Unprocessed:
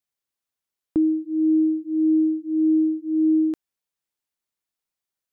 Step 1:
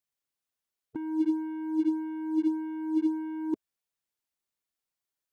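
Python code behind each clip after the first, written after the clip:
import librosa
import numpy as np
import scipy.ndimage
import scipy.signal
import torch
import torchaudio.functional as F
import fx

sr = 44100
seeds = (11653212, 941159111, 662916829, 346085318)

y = fx.spec_gate(x, sr, threshold_db=-15, keep='strong')
y = fx.leveller(y, sr, passes=2)
y = fx.over_compress(y, sr, threshold_db=-23.0, ratio=-0.5)
y = F.gain(torch.from_numpy(y), -5.0).numpy()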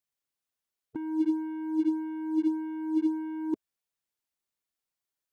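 y = x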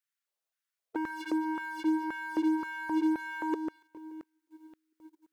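y = fx.echo_split(x, sr, split_hz=320.0, low_ms=694, high_ms=143, feedback_pct=52, wet_db=-14)
y = fx.filter_lfo_highpass(y, sr, shape='square', hz=1.9, low_hz=550.0, high_hz=1500.0, q=2.2)
y = fx.leveller(y, sr, passes=2)
y = F.gain(torch.from_numpy(y), 1.5).numpy()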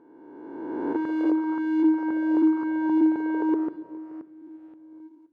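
y = fx.spec_swells(x, sr, rise_s=1.83)
y = fx.bandpass_q(y, sr, hz=300.0, q=0.52)
y = fx.room_shoebox(y, sr, seeds[0], volume_m3=1500.0, walls='mixed', distance_m=0.38)
y = F.gain(torch.from_numpy(y), 6.0).numpy()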